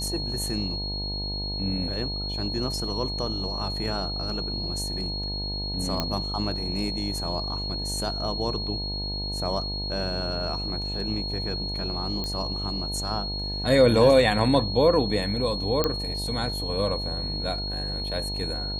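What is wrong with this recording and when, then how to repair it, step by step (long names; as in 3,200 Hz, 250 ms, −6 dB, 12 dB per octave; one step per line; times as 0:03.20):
mains buzz 50 Hz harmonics 19 −33 dBFS
whistle 4,300 Hz −31 dBFS
0:06.00: click −10 dBFS
0:12.24: click −17 dBFS
0:15.84: click −8 dBFS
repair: click removal
hum removal 50 Hz, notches 19
notch filter 4,300 Hz, Q 30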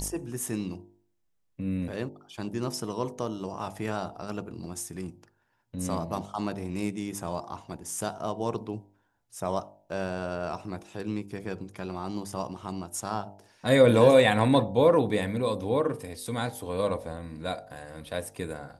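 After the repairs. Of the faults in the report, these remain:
none of them is left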